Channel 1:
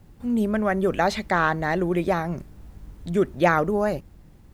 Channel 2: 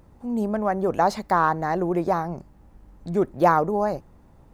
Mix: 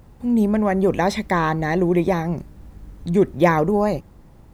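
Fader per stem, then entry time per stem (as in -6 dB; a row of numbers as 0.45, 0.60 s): 0.0, +2.0 dB; 0.00, 0.00 s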